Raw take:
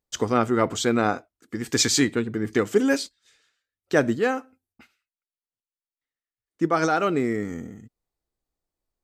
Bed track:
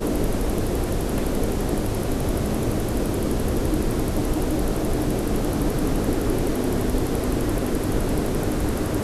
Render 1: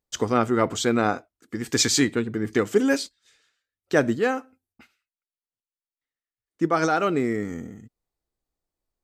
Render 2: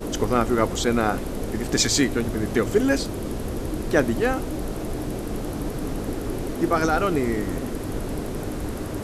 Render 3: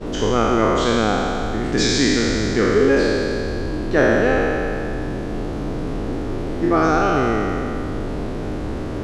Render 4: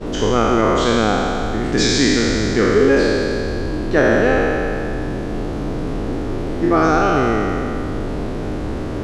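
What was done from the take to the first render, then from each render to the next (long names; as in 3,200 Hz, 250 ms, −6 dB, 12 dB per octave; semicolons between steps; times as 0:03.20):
no processing that can be heard
mix in bed track −6 dB
peak hold with a decay on every bin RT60 2.80 s; high-frequency loss of the air 120 metres
level +2 dB; brickwall limiter −3 dBFS, peak gain reduction 2 dB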